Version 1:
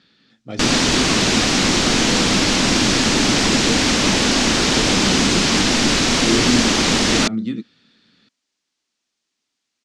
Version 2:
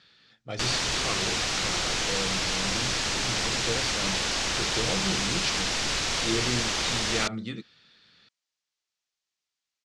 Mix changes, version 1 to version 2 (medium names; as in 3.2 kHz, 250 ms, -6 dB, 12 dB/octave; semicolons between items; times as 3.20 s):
background -9.5 dB; master: add peaking EQ 250 Hz -14.5 dB 1.1 oct